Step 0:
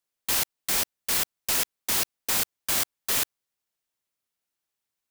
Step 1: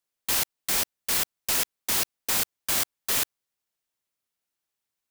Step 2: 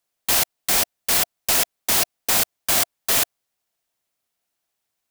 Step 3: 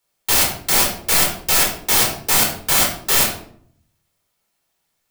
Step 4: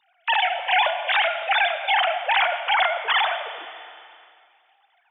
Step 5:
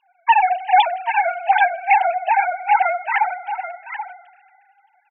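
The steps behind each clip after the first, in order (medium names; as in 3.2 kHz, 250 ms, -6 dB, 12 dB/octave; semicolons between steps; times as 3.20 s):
no audible change
peaking EQ 690 Hz +7 dB 0.31 oct; trim +6 dB
in parallel at -1 dB: peak limiter -17 dBFS, peak gain reduction 11 dB; on the sum: simulated room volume 860 m³, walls furnished, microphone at 4.3 m; trim -3 dB
formants replaced by sine waves; Schroeder reverb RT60 1.7 s, combs from 27 ms, DRR 9.5 dB; three bands compressed up and down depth 40%; trim -4.5 dB
formants replaced by sine waves; brick-wall FIR high-pass 350 Hz; delay 783 ms -10 dB; trim +4 dB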